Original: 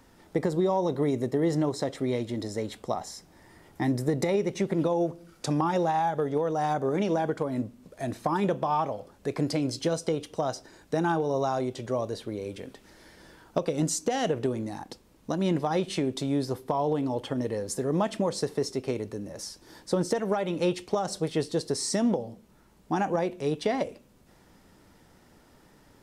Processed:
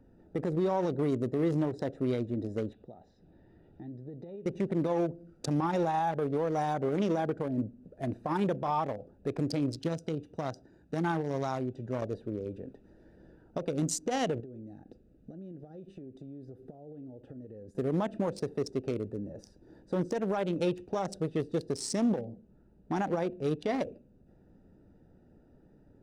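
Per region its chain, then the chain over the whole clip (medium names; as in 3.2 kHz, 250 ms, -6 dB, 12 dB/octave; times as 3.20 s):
2.73–4.46 s: resonant low-pass 3.7 kHz, resonance Q 2.4 + compression 2:1, threshold -52 dBFS
9.76–12.02 s: high-pass 53 Hz + peaking EQ 490 Hz -5.5 dB 1.2 oct
14.40–17.75 s: compression 10:1, threshold -40 dBFS + peaking EQ 960 Hz -14 dB 0.29 oct
whole clip: local Wiener filter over 41 samples; peak limiter -21 dBFS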